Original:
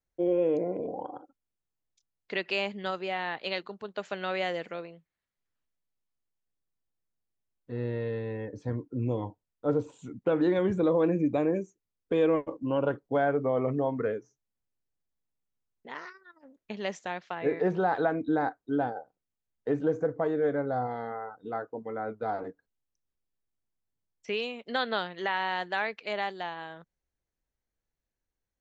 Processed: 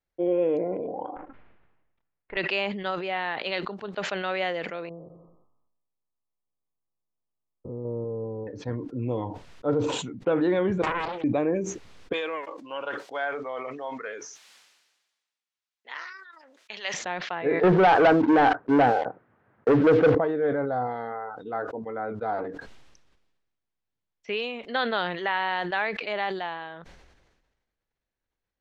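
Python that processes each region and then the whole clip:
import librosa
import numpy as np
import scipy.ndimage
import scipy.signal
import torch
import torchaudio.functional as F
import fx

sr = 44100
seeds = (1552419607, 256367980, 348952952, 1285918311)

y = fx.chain(x, sr, fx.halfwave_gain(db=-12.0),
    fx.lowpass(hz=2300.0, slope=24), at=(1.16, 2.37))
y = fx.chain(y, sr, fx.spec_steps(hold_ms=200),
    fx.brickwall_lowpass(high_hz=1300.0),
    fx.echo_feedback(ms=89, feedback_pct=53, wet_db=-23), at=(4.89, 8.47))
y = fx.chain(y, sr, fx.highpass(hz=570.0, slope=24),
    fx.doppler_dist(depth_ms=0.81), at=(10.82, 11.24))
y = fx.chain(y, sr, fx.highpass(hz=1100.0, slope=6),
    fx.tilt_eq(slope=3.0), at=(12.13, 16.94))
y = fx.chain(y, sr, fx.cheby1_bandpass(low_hz=100.0, high_hz=1600.0, order=3),
    fx.leveller(passes=3), at=(17.63, 20.15))
y = scipy.signal.sosfilt(scipy.signal.butter(2, 4000.0, 'lowpass', fs=sr, output='sos'), y)
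y = fx.low_shelf(y, sr, hz=340.0, db=-5.0)
y = fx.sustainer(y, sr, db_per_s=44.0)
y = F.gain(torch.from_numpy(y), 3.5).numpy()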